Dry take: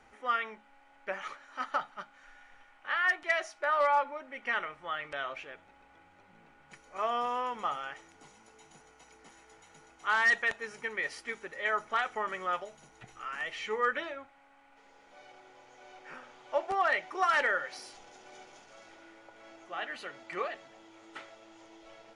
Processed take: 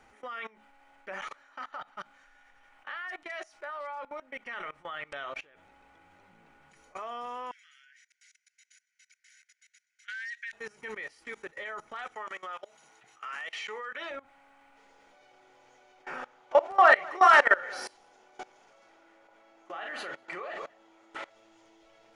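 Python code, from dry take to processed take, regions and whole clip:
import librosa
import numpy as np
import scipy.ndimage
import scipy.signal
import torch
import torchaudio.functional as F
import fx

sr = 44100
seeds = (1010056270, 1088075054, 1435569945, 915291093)

y = fx.chain(x, sr, fx.lowpass(hz=3600.0, slope=6),
    fx.low_shelf(hz=330.0, db=-7.0), at=(1.43, 1.96))
y = fx.chain(y, sr, fx.cheby_ripple_highpass(hz=1500.0, ripple_db=6),
    fx.high_shelf(hz=7000.0, db=-7.5), at=(7.51, 10.53))
y = fx.chain(y, sr, fx.highpass(hz=780.0, slope=6),
    fx.high_shelf(hz=8900.0, db=-6.0), at=(12.15, 14.11))
y = fx.chain(y, sr, fx.peak_eq(hz=870.0, db=7.0, octaves=2.9),
    fx.doubler(ms=40.0, db=-7.5),
    fx.echo_single(ms=195, db=-16.5), at=(16.03, 21.3))
y = fx.high_shelf(y, sr, hz=9000.0, db=3.5)
y = fx.level_steps(y, sr, step_db=22)
y = y * 10.0 ** (5.5 / 20.0)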